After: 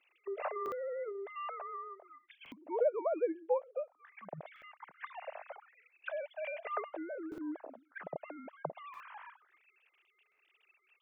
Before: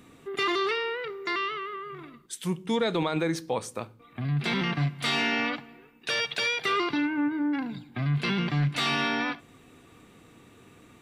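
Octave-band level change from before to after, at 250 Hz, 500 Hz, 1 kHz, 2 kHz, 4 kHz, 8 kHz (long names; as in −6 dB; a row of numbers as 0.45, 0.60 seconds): −17.5 dB, −4.0 dB, −10.5 dB, −19.0 dB, below −30 dB, below −35 dB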